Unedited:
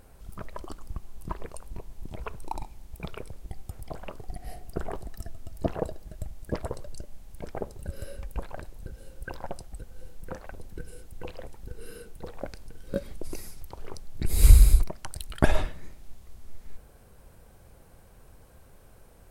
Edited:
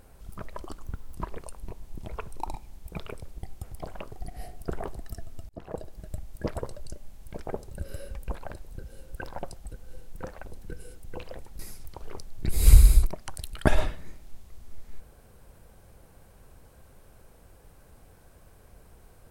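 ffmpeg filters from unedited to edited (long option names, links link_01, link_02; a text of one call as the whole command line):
ffmpeg -i in.wav -filter_complex "[0:a]asplit=5[link_01][link_02][link_03][link_04][link_05];[link_01]atrim=end=0.844[link_06];[link_02]atrim=start=0.84:end=1.22,asetpts=PTS-STARTPTS,asetrate=55566,aresample=44100[link_07];[link_03]atrim=start=1.216:end=5.57,asetpts=PTS-STARTPTS,afade=type=out:start_time=4.35:duration=0.004:curve=hsin[link_08];[link_04]atrim=start=5.57:end=11.672,asetpts=PTS-STARTPTS,afade=type=in:duration=0.5[link_09];[link_05]atrim=start=13.358[link_10];[link_06][link_07]acrossfade=duration=0.004:curve1=hsin:curve2=hsin[link_11];[link_08][link_09]concat=n=2:v=0:a=1[link_12];[link_11][link_12]acrossfade=duration=0.004:curve1=hsin:curve2=hsin[link_13];[link_13][link_10]acrossfade=duration=0.004:curve1=hsin:curve2=hsin" out.wav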